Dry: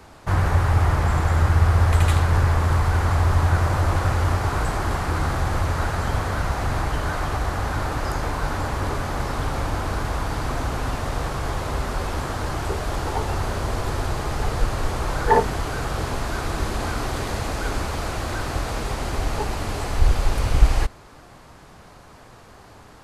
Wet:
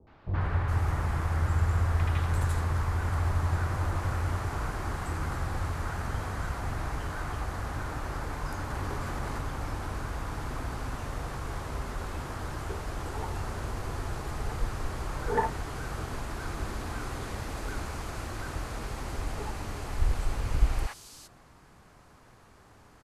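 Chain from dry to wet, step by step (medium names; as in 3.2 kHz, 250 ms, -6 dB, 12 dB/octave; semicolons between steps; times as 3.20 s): three bands offset in time lows, mids, highs 70/410 ms, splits 620/3900 Hz; 8.70–9.41 s: level flattener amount 50%; trim -9 dB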